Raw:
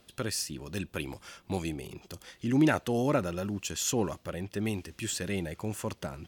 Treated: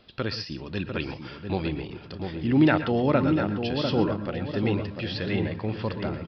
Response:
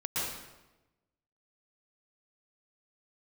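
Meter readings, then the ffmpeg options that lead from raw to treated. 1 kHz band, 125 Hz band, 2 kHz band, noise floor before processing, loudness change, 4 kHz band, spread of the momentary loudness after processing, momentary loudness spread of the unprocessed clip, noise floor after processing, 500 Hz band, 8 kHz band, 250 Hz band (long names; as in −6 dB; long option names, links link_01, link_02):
+5.5 dB, +6.5 dB, +5.0 dB, −63 dBFS, +5.0 dB, +4.0 dB, 13 LU, 13 LU, −44 dBFS, +5.5 dB, below −20 dB, +6.0 dB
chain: -filter_complex "[0:a]asplit=2[link_01][link_02];[link_02]adelay=697,lowpass=frequency=1100:poles=1,volume=-5dB,asplit=2[link_03][link_04];[link_04]adelay=697,lowpass=frequency=1100:poles=1,volume=0.49,asplit=2[link_05][link_06];[link_06]adelay=697,lowpass=frequency=1100:poles=1,volume=0.49,asplit=2[link_07][link_08];[link_08]adelay=697,lowpass=frequency=1100:poles=1,volume=0.49,asplit=2[link_09][link_10];[link_10]adelay=697,lowpass=frequency=1100:poles=1,volume=0.49,asplit=2[link_11][link_12];[link_12]adelay=697,lowpass=frequency=1100:poles=1,volume=0.49[link_13];[link_01][link_03][link_05][link_07][link_09][link_11][link_13]amix=inputs=7:normalize=0,asplit=2[link_14][link_15];[1:a]atrim=start_sample=2205,atrim=end_sample=6174[link_16];[link_15][link_16]afir=irnorm=-1:irlink=0,volume=-12dB[link_17];[link_14][link_17]amix=inputs=2:normalize=0,aresample=11025,aresample=44100,volume=3dB"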